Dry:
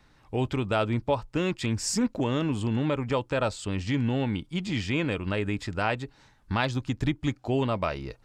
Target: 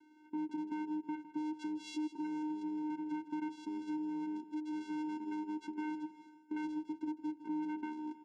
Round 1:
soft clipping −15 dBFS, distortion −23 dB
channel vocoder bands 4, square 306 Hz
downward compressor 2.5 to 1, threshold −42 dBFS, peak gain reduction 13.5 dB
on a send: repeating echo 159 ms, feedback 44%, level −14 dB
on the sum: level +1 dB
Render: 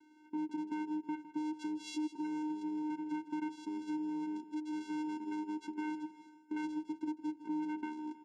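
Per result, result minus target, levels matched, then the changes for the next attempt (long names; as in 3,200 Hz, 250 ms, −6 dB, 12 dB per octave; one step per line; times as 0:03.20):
soft clipping: distortion −10 dB; 8,000 Hz band +3.5 dB
change: soft clipping −22.5 dBFS, distortion −13 dB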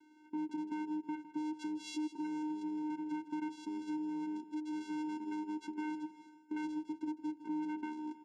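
8,000 Hz band +4.0 dB
add after downward compressor: high-shelf EQ 5,400 Hz −6.5 dB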